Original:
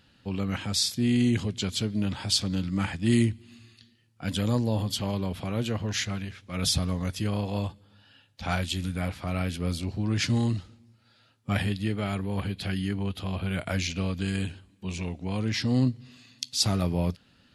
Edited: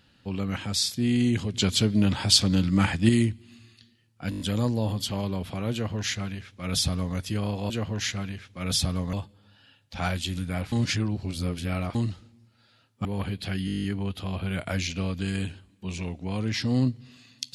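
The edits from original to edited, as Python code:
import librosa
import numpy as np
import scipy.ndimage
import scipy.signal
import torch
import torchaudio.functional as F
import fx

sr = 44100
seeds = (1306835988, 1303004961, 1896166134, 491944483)

y = fx.edit(x, sr, fx.clip_gain(start_s=1.54, length_s=1.55, db=6.0),
    fx.stutter(start_s=4.3, slice_s=0.02, count=6),
    fx.duplicate(start_s=5.63, length_s=1.43, to_s=7.6),
    fx.reverse_span(start_s=9.19, length_s=1.23),
    fx.cut(start_s=11.52, length_s=0.71),
    fx.stutter(start_s=12.84, slice_s=0.02, count=10), tone=tone)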